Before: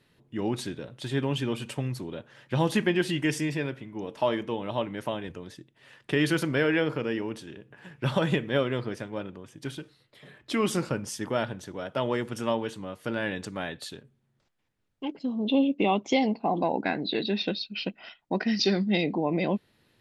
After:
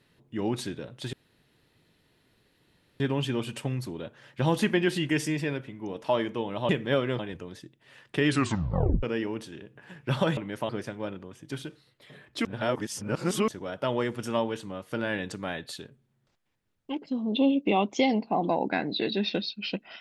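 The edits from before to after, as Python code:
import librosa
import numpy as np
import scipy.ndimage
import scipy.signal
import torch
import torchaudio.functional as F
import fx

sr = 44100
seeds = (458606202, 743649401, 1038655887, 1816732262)

y = fx.edit(x, sr, fx.insert_room_tone(at_s=1.13, length_s=1.87),
    fx.swap(start_s=4.82, length_s=0.32, other_s=8.32, other_length_s=0.5),
    fx.tape_stop(start_s=6.22, length_s=0.76),
    fx.reverse_span(start_s=10.58, length_s=1.03), tone=tone)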